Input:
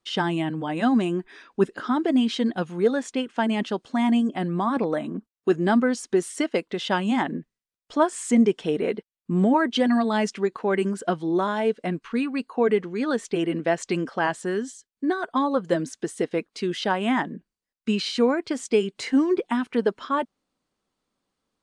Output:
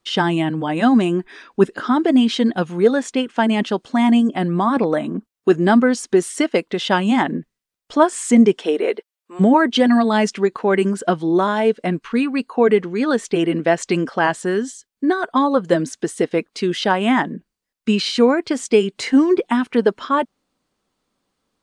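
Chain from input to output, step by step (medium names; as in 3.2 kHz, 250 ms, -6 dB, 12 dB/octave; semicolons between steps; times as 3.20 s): 8.58–9.39 s: high-pass 250 Hz -> 560 Hz 24 dB/octave; trim +6.5 dB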